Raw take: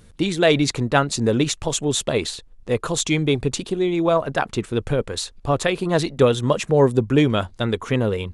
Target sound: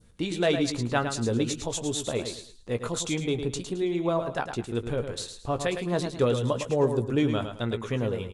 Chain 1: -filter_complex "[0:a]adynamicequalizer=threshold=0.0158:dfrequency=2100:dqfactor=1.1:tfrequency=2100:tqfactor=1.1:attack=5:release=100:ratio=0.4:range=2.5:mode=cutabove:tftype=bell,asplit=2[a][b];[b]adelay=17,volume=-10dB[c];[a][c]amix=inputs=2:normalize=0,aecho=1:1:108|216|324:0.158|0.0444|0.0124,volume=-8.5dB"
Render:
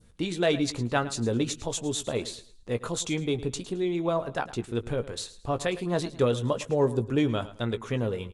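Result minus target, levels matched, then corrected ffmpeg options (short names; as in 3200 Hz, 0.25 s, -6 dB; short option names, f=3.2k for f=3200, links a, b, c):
echo-to-direct -8 dB
-filter_complex "[0:a]adynamicequalizer=threshold=0.0158:dfrequency=2100:dqfactor=1.1:tfrequency=2100:tqfactor=1.1:attack=5:release=100:ratio=0.4:range=2.5:mode=cutabove:tftype=bell,asplit=2[a][b];[b]adelay=17,volume=-10dB[c];[a][c]amix=inputs=2:normalize=0,aecho=1:1:108|216|324:0.398|0.111|0.0312,volume=-8.5dB"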